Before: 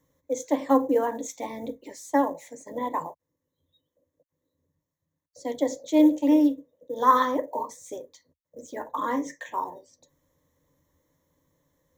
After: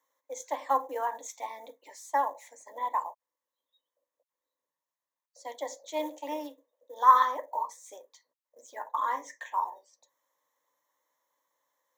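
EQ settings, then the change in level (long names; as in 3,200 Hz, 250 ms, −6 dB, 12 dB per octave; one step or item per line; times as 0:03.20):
high-pass with resonance 890 Hz, resonance Q 1.7
−4.5 dB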